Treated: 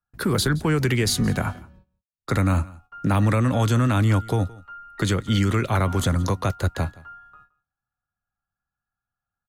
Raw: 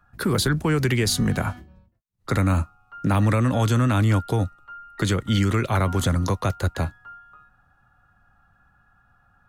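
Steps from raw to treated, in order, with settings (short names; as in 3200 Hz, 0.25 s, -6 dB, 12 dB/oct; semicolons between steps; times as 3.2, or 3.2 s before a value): gate -51 dBFS, range -28 dB; echo 0.17 s -22 dB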